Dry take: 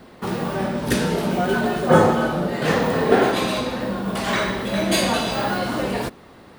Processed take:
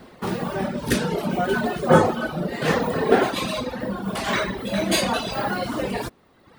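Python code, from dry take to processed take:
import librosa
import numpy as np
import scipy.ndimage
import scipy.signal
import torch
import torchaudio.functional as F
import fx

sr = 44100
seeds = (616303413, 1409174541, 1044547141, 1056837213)

y = fx.dereverb_blind(x, sr, rt60_s=1.1)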